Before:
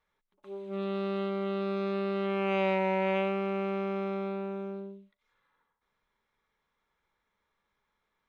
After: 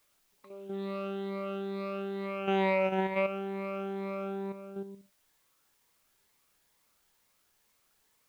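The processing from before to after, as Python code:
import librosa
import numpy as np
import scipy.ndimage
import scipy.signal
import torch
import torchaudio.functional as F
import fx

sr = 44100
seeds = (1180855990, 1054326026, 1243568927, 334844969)

y = fx.spec_ripple(x, sr, per_octave=0.96, drift_hz=2.2, depth_db=12)
y = fx.level_steps(y, sr, step_db=9)
y = fx.quant_dither(y, sr, seeds[0], bits=12, dither='triangular')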